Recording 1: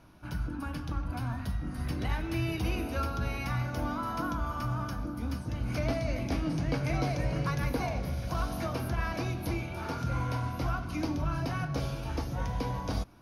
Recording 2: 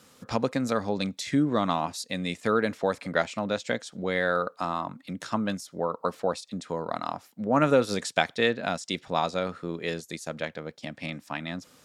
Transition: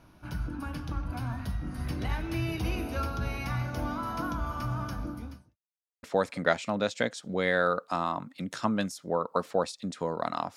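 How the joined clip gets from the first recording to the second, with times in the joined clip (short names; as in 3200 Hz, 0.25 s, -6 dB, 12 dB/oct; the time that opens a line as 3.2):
recording 1
5.11–5.57 fade out quadratic
5.57–6.03 mute
6.03 switch to recording 2 from 2.72 s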